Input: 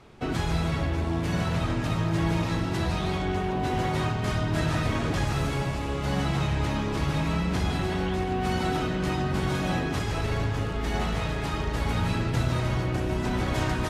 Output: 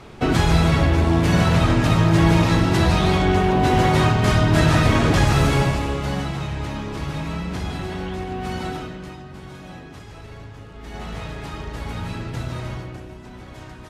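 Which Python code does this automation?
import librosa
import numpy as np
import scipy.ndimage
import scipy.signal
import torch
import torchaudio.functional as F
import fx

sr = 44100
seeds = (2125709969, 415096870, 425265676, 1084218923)

y = fx.gain(x, sr, db=fx.line((5.62, 10.0), (6.36, -1.0), (8.67, -1.0), (9.23, -11.5), (10.68, -11.5), (11.15, -3.0), (12.7, -3.0), (13.2, -12.5)))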